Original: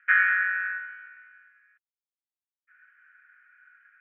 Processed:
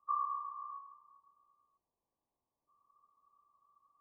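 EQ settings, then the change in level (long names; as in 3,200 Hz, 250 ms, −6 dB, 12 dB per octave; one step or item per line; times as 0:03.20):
linear-phase brick-wall low-pass 1,200 Hz
+17.0 dB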